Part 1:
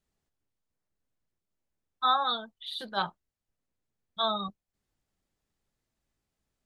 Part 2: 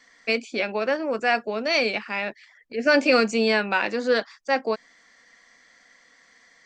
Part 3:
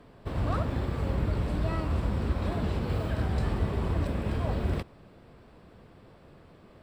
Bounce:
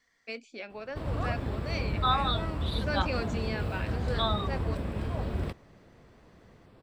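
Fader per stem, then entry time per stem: -1.5, -15.5, -3.0 dB; 0.00, 0.00, 0.70 s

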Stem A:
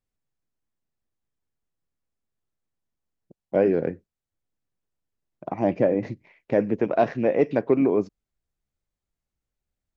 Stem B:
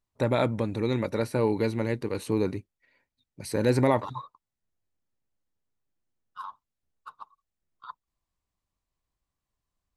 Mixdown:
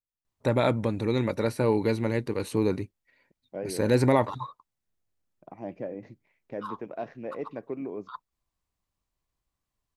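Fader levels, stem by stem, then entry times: -15.0, +1.0 dB; 0.00, 0.25 s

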